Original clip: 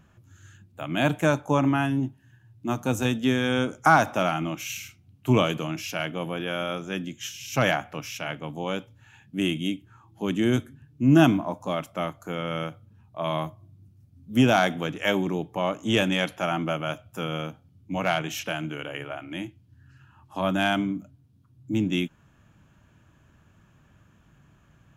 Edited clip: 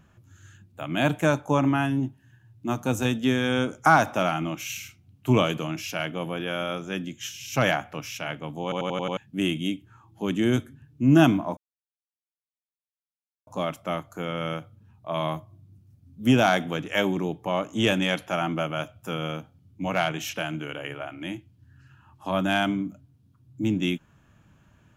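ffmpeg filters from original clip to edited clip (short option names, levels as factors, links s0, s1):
-filter_complex "[0:a]asplit=8[s0][s1][s2][s3][s4][s5][s6][s7];[s0]atrim=end=8.722[s8];[s1]atrim=start=8.628:end=8.722[s9];[s2]atrim=start=8.628:end=8.722[s10];[s3]atrim=start=8.628:end=8.722[s11];[s4]atrim=start=8.628:end=8.722[s12];[s5]atrim=start=8.628:end=8.722[s13];[s6]atrim=start=9.168:end=11.57,asetpts=PTS-STARTPTS,afade=t=out:st=2.398:d=0.004:c=hsin,apad=pad_dur=1.9[s14];[s7]atrim=start=11.57,asetpts=PTS-STARTPTS,afade=t=in:d=0.004:c=hsin[s15];[s8][s9]acrossfade=d=0.004:c1=hsin:c2=hsin[s16];[s16][s10]acrossfade=d=0.004:c1=hsin:c2=hsin[s17];[s17][s11]acrossfade=d=0.004:c1=hsin:c2=hsin[s18];[s18][s12]acrossfade=d=0.004:c1=hsin:c2=hsin[s19];[s19][s13]acrossfade=d=0.004:c1=hsin:c2=hsin[s20];[s14][s15]concat=n=2:v=0:a=1[s21];[s20][s21]acrossfade=d=0.004:c1=hsin:c2=hsin"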